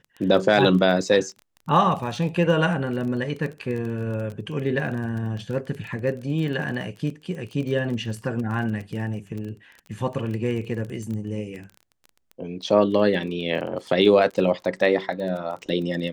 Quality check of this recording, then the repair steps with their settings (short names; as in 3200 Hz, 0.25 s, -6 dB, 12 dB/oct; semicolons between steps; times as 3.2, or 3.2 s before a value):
crackle 24/s -31 dBFS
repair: de-click